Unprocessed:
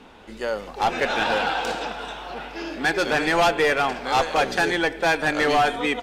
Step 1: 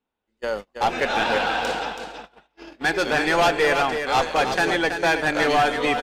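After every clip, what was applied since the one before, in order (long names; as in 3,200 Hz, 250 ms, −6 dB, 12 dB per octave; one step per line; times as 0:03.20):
noise gate −29 dBFS, range −36 dB
on a send: single-tap delay 327 ms −7.5 dB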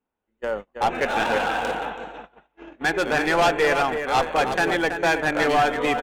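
adaptive Wiener filter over 9 samples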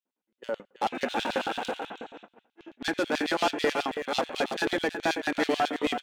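coupled-rooms reverb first 0.45 s, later 3.3 s, from −27 dB, DRR 19 dB
auto-filter high-pass square 9.2 Hz 250–3,600 Hz
level −6.5 dB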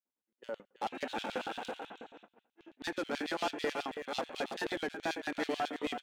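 wow of a warped record 33 1/3 rpm, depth 100 cents
level −8.5 dB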